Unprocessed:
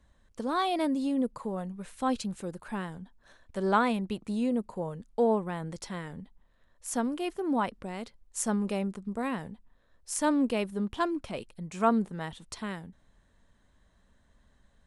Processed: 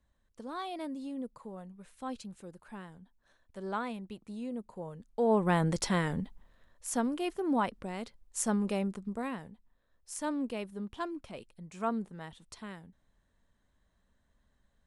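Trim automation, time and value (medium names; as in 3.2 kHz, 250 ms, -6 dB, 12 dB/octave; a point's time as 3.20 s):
4.44 s -10.5 dB
5.23 s -4 dB
5.51 s +8.5 dB
6.20 s +8.5 dB
6.92 s -1 dB
9.02 s -1 dB
9.50 s -8 dB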